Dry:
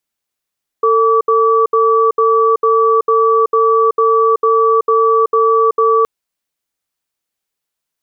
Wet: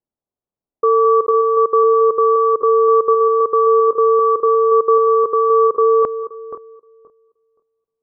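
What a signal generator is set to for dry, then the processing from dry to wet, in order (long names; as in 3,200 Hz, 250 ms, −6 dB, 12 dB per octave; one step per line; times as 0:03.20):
tone pair in a cadence 449 Hz, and 1,150 Hz, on 0.38 s, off 0.07 s, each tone −11 dBFS 5.22 s
feedback delay that plays each chunk backwards 262 ms, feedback 40%, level −12 dB
low-pass that shuts in the quiet parts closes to 790 Hz, open at −9 dBFS
low-pass filter 1,100 Hz 12 dB per octave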